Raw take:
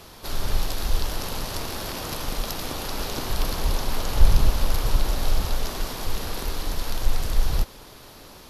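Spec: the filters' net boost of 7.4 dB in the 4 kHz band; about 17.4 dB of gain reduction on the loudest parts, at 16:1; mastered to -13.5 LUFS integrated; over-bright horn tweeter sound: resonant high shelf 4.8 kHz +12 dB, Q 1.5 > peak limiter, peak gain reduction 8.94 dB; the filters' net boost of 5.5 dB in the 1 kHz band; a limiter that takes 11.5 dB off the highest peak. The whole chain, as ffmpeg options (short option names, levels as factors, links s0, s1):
-af "equalizer=f=1000:t=o:g=7,equalizer=f=4000:t=o:g=4.5,acompressor=threshold=0.0631:ratio=16,alimiter=level_in=1.12:limit=0.0631:level=0:latency=1,volume=0.891,highshelf=f=4800:t=q:w=1.5:g=12,volume=10,alimiter=limit=0.708:level=0:latency=1"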